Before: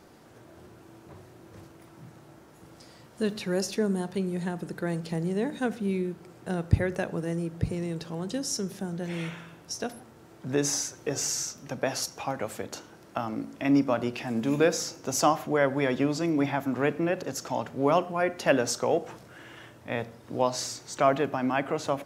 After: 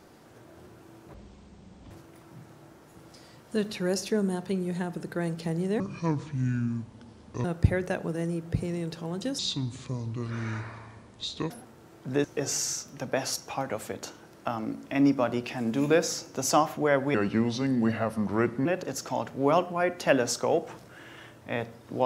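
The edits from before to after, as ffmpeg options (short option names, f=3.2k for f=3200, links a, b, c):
-filter_complex "[0:a]asplit=10[a][b][c][d][e][f][g][h][i][j];[a]atrim=end=1.144[k];[b]atrim=start=1.14:end=1.57,asetpts=PTS-STARTPTS,asetrate=24696,aresample=44100,atrim=end_sample=33862,asetpts=PTS-STARTPTS[l];[c]atrim=start=1.566:end=5.464[m];[d]atrim=start=5.46:end=6.53,asetpts=PTS-STARTPTS,asetrate=28665,aresample=44100,atrim=end_sample=72595,asetpts=PTS-STARTPTS[n];[e]atrim=start=6.526:end=8.474[o];[f]atrim=start=8.47:end=9.89,asetpts=PTS-STARTPTS,asetrate=29547,aresample=44100[p];[g]atrim=start=9.886:end=10.632[q];[h]atrim=start=10.938:end=15.844[r];[i]atrim=start=15.84:end=17.05,asetpts=PTS-STARTPTS,asetrate=35280,aresample=44100,atrim=end_sample=66701,asetpts=PTS-STARTPTS[s];[j]atrim=start=17.046[t];[k][l]acrossfade=d=0.004:c1=hsin:c2=hsin[u];[u][m]acrossfade=d=0.004:c1=hsin:c2=hsin[v];[v][n]acrossfade=d=0.004:c1=hsin:c2=hsin[w];[w][o]acrossfade=d=0.004:c1=hsin:c2=hsin[x];[x][p]acrossfade=d=0.004:c1=hsin:c2=hsin[y];[y][q]acrossfade=d=0.004:c1=hsin:c2=hsin[z];[z][r]acrossfade=d=0.004:c1=hsin:c2=hsin[aa];[aa][s]acrossfade=d=0.004:c1=hsin:c2=hsin[ab];[ab][t]acrossfade=d=0.004:c1=hsin:c2=hsin"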